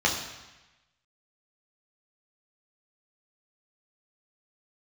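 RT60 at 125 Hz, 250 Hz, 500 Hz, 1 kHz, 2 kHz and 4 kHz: 1.2, 1.0, 1.0, 1.1, 1.2, 1.1 seconds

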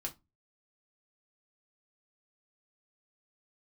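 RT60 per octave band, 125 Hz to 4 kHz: 0.45, 0.35, 0.20, 0.20, 0.15, 0.15 seconds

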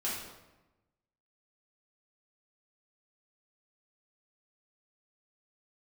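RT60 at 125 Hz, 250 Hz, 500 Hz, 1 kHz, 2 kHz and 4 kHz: 1.4, 1.2, 1.1, 1.0, 0.90, 0.75 seconds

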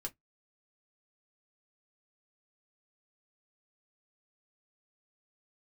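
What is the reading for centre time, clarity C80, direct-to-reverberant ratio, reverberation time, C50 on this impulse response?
7 ms, 43.5 dB, 1.0 dB, 0.10 s, 28.0 dB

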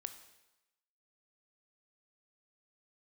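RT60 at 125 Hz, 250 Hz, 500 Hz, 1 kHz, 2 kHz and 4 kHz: 0.90, 0.85, 0.95, 1.0, 0.95, 0.95 seconds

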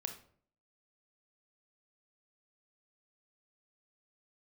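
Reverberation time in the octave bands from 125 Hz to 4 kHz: 0.65, 0.65, 0.60, 0.50, 0.40, 0.35 seconds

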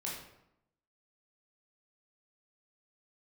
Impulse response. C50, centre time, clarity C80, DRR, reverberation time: 2.5 dB, 49 ms, 6.0 dB, −4.5 dB, 0.80 s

